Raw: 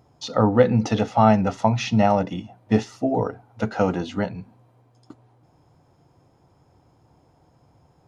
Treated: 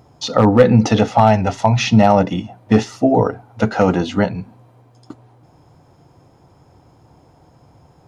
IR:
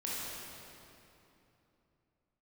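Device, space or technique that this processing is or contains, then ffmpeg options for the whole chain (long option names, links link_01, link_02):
clipper into limiter: -filter_complex "[0:a]asettb=1/sr,asplit=3[link_01][link_02][link_03];[link_01]atrim=end=1.204[link_04];[link_02]atrim=start=1.2:end=1.77,asetpts=PTS-STARTPTS,afade=type=in:duration=0.004:curve=qsin,afade=type=out:start_time=0.566:duration=0.004:curve=qsin,equalizer=frequency=200:width_type=o:width=0.33:gain=-9,equalizer=frequency=315:width_type=o:width=0.33:gain=-7,equalizer=frequency=500:width_type=o:width=0.33:gain=-6,equalizer=frequency=1250:width_type=o:width=0.33:gain=-7[link_05];[link_03]atrim=start=1.766[link_06];[link_04][link_05]acrossfade=duration=0.004:curve1=hsin:curve2=qsin[link_07];[link_07][link_06]acrossfade=duration=0.004:curve1=qsin:curve2=hsin,asoftclip=type=hard:threshold=-8dB,alimiter=limit=-10.5dB:level=0:latency=1:release=33,volume=8.5dB"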